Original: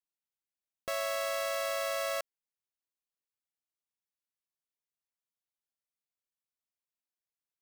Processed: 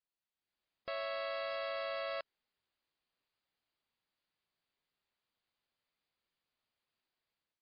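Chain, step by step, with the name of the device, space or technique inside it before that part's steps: low-bitrate web radio (AGC gain up to 10.5 dB; limiter -31.5 dBFS, peak gain reduction 16 dB; MP3 24 kbps 11025 Hz)

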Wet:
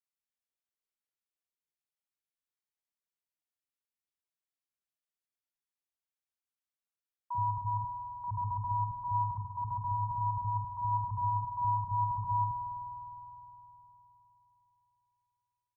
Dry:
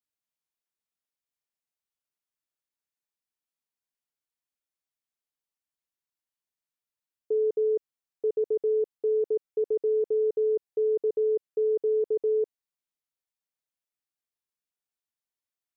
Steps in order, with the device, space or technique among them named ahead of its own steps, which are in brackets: alien voice (ring modulator 540 Hz; flange 0.13 Hz, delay 9.6 ms, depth 8.9 ms, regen -85%); 7.34–7.75 dynamic EQ 200 Hz, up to -6 dB, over -55 dBFS, Q 2; three bands offset in time highs, mids, lows 40/70 ms, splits 170/510 Hz; spring tank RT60 3.6 s, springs 51 ms, chirp 75 ms, DRR 3 dB

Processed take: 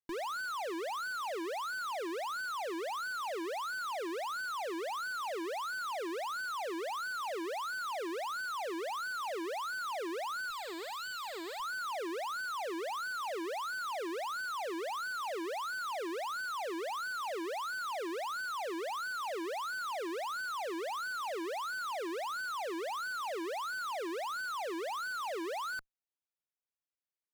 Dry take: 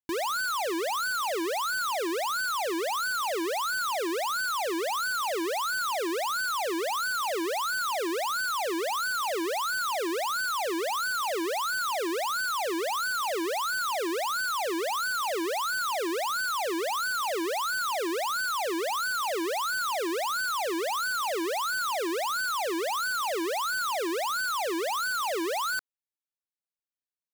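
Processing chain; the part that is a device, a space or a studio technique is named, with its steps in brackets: 10.5–11.6 graphic EQ 250/500/2000/4000/8000 Hz -9/-6/+3/+8/+10 dB; tube preamp driven hard (tube stage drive 36 dB, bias 0.55; low shelf 160 Hz -6 dB; high shelf 3800 Hz -7.5 dB)

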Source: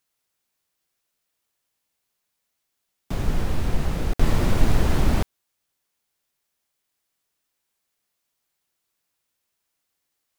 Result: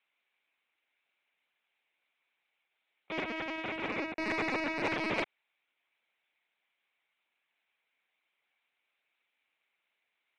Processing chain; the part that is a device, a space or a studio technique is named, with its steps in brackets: talking toy (LPC vocoder at 8 kHz pitch kept; HPF 370 Hz 12 dB/oct; bell 2300 Hz +11 dB 0.46 oct; soft clip -24 dBFS, distortion -12 dB); 3.88–4.91 notch 3200 Hz, Q 5.3

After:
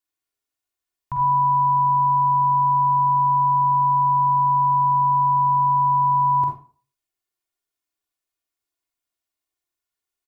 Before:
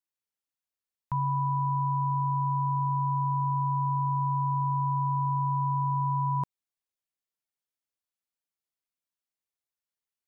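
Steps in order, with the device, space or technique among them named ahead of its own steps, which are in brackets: microphone above a desk (comb 2.8 ms, depth 63%; reverb RT60 0.40 s, pre-delay 41 ms, DRR 1 dB); gain +2.5 dB

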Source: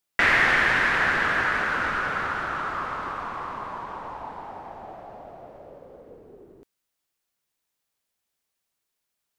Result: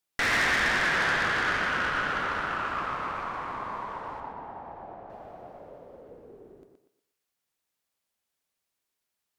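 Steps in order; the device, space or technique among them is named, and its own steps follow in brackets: 4.2–5.1 LPF 1400 Hz 6 dB/oct; rockabilly slapback (tube stage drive 22 dB, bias 0.6; tape echo 0.12 s, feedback 34%, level -4 dB, low-pass 4800 Hz)

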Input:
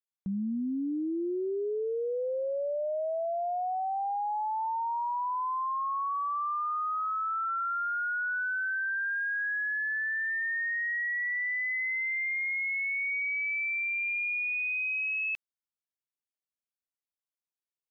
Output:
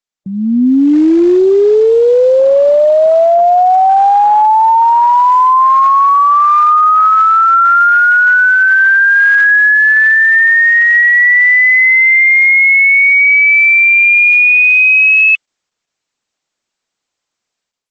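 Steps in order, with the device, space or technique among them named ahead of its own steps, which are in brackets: noise-suppressed video call (HPF 120 Hz 12 dB/oct; spectral gate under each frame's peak -30 dB strong; AGC gain up to 16 dB; gain +8 dB; Opus 12 kbps 48000 Hz)

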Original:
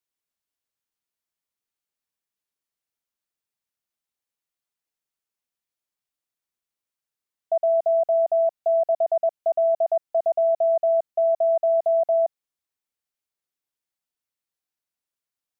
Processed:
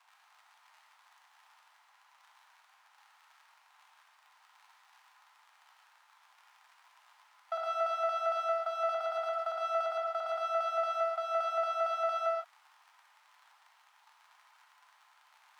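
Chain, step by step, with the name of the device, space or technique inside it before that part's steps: Wiener smoothing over 25 samples; record under a worn stylus (tracing distortion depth 0.11 ms; crackle 83/s -38 dBFS; pink noise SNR 33 dB); steep high-pass 840 Hz 48 dB/oct; tilt -5.5 dB/oct; non-linear reverb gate 0.19 s flat, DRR -0.5 dB

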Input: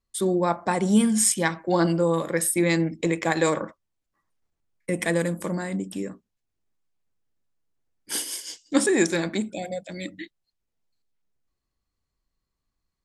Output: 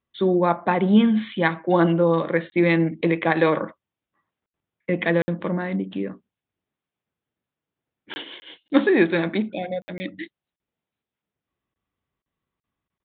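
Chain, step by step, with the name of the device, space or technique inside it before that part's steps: call with lost packets (HPF 100 Hz; downsampling 8000 Hz; packet loss bursts); gain +3.5 dB

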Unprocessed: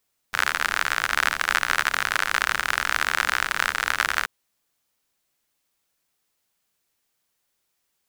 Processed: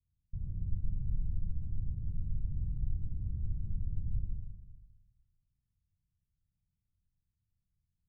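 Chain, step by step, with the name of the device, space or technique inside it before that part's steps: club heard from the street (limiter -5.5 dBFS, peak gain reduction 4.5 dB; LPF 120 Hz 24 dB/oct; reverb RT60 1.1 s, pre-delay 58 ms, DRR -0.5 dB); gain +13 dB

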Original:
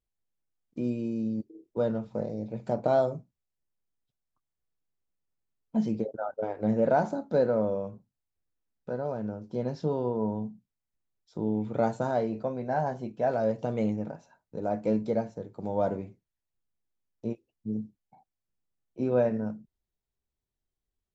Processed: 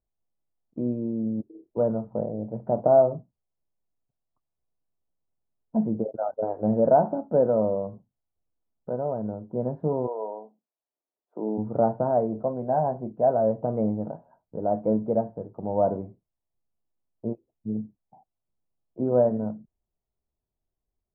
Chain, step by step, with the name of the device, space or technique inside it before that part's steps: 10.06–11.57 HPF 510 Hz -> 230 Hz 24 dB/oct; under water (LPF 1100 Hz 24 dB/oct; bell 660 Hz +5 dB 0.31 oct); gain +2.5 dB

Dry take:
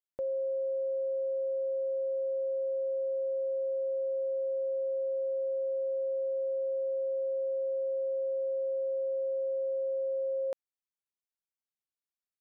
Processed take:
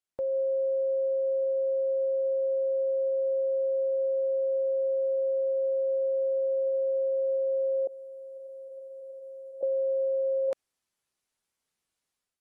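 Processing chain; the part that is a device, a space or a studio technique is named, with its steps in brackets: 7.87–9.63 differentiator; low-bitrate web radio (AGC gain up to 9.5 dB; limiter -26 dBFS, peak gain reduction 6.5 dB; gain +2 dB; AAC 32 kbps 32000 Hz)

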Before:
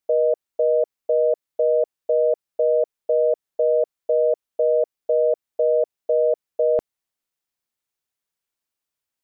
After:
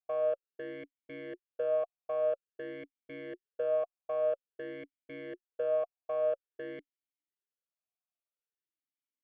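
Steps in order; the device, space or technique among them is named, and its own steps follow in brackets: talk box (tube stage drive 21 dB, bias 0.6; vowel sweep a-i 0.5 Hz)

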